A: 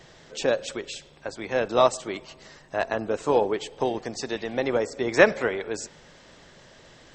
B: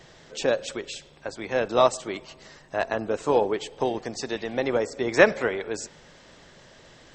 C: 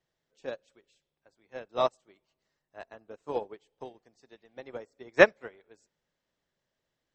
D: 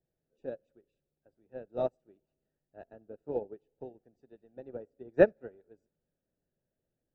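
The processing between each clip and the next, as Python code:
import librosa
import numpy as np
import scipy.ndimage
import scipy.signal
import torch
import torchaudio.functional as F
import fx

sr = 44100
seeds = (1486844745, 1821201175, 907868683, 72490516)

y1 = x
y2 = fx.upward_expand(y1, sr, threshold_db=-33.0, expansion=2.5)
y3 = scipy.signal.lfilter(np.full(41, 1.0 / 41), 1.0, y2)
y3 = y3 * 10.0 ** (2.0 / 20.0)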